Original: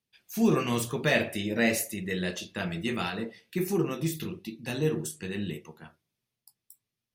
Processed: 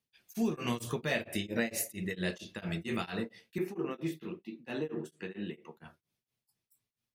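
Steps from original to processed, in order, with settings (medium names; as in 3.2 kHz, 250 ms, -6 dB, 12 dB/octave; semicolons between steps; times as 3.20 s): 3.58–5.77 s: three-band isolator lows -19 dB, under 190 Hz, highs -17 dB, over 3.1 kHz; compression 10:1, threshold -26 dBFS, peak gain reduction 8.5 dB; tremolo of two beating tones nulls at 4.4 Hz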